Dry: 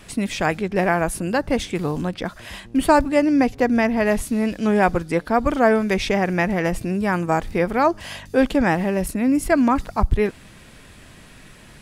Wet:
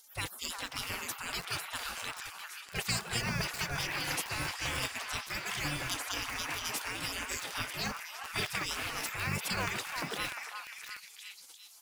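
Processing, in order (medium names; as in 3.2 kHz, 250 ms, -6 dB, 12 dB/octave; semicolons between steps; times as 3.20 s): spectral gate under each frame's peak -30 dB weak; peaking EQ 140 Hz +6.5 dB 1.7 oct; in parallel at 0 dB: compression 6:1, threshold -38 dBFS, peak gain reduction 7.5 dB; on the sum: modulation noise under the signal 19 dB; on a send: repeats whose band climbs or falls 351 ms, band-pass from 1.1 kHz, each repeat 0.7 oct, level -2 dB; on the sum: bit-crushed delay 645 ms, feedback 55%, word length 5-bit, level -5 dB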